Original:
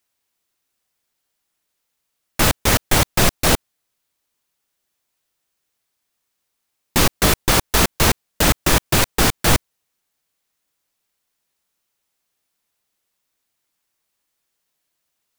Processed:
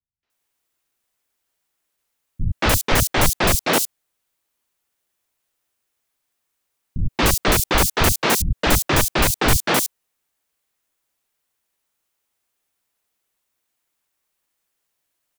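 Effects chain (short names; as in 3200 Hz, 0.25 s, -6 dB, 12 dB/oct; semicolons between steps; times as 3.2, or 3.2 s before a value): three bands offset in time lows, mids, highs 0.23/0.3 s, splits 170/4700 Hz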